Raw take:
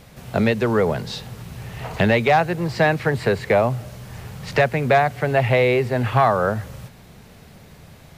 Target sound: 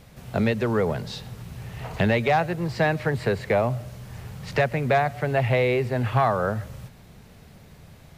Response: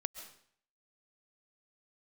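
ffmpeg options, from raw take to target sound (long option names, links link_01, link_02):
-filter_complex "[0:a]asplit=2[link_01][link_02];[1:a]atrim=start_sample=2205,afade=type=out:start_time=0.19:duration=0.01,atrim=end_sample=8820,lowshelf=frequency=240:gain=10[link_03];[link_02][link_03]afir=irnorm=-1:irlink=0,volume=-8.5dB[link_04];[link_01][link_04]amix=inputs=2:normalize=0,volume=-7.5dB"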